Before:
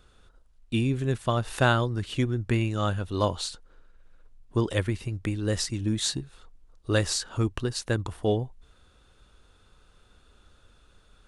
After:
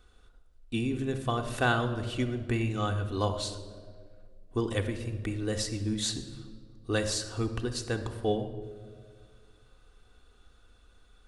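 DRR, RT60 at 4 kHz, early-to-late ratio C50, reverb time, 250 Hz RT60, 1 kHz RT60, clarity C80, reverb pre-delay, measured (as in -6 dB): 4.0 dB, 1.1 s, 10.0 dB, 1.9 s, 2.1 s, 1.5 s, 11.5 dB, 3 ms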